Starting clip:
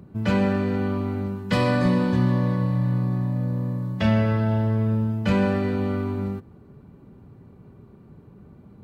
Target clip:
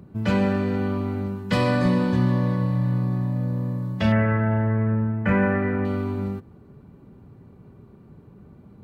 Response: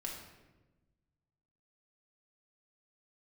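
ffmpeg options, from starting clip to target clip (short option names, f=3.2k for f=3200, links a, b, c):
-filter_complex "[0:a]asettb=1/sr,asplit=3[a][b][c];[a]atrim=end=4.124[d];[b]atrim=start=4.12:end=5.85,asetpts=PTS-STARTPTS,afade=t=in:d=0.004:c=qsin,afade=t=out:st=1.726:d=0.004:c=qsin,highshelf=f=2.8k:t=q:w=3:g=-14[e];[c]atrim=start=5.846[f];[d][e]acrossfade=d=0.004:c1=hsin:c2=qsin[g];[g][f]acrossfade=d=0.004:c1=qsin:c2=hsin"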